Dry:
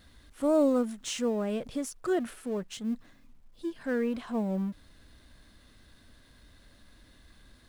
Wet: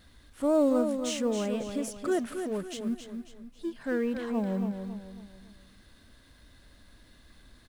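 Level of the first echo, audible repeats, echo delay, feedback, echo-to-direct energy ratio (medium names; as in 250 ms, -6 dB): -7.5 dB, 4, 273 ms, 39%, -7.0 dB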